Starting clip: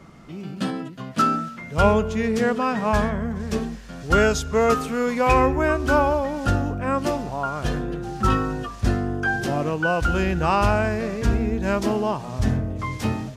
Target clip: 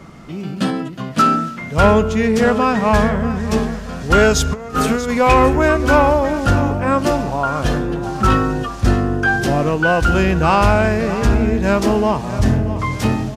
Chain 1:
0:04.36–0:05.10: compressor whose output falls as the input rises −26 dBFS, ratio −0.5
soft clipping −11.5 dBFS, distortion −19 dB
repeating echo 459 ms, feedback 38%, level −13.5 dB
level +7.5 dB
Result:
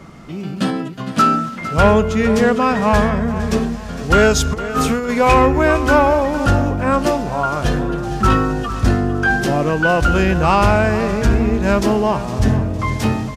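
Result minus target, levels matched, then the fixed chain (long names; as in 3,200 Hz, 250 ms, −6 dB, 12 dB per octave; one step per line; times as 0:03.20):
echo 175 ms early
0:04.36–0:05.10: compressor whose output falls as the input rises −26 dBFS, ratio −0.5
soft clipping −11.5 dBFS, distortion −19 dB
repeating echo 634 ms, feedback 38%, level −13.5 dB
level +7.5 dB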